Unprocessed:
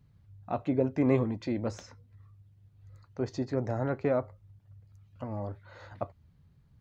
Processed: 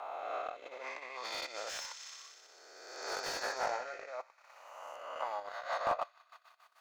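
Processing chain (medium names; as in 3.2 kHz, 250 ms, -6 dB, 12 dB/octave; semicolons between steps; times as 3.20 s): reverse spectral sustain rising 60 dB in 1.68 s; compressor with a negative ratio -31 dBFS, ratio -1; on a send: feedback echo behind a high-pass 61 ms, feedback 84%, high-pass 2.3 kHz, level -9 dB; on the sum: rotary cabinet horn 0.8 Hz, later 6.7 Hz, at 4.88 s; high-pass 810 Hz 24 dB/octave; transient shaper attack +1 dB, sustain -12 dB; 3.05–4.06 s: doubling 20 ms -5 dB; slew-rate limiter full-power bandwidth 23 Hz; trim +7 dB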